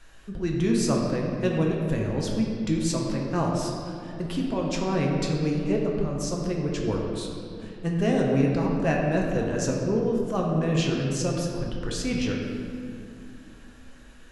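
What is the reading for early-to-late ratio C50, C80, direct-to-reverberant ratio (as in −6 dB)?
1.5 dB, 2.5 dB, −1.5 dB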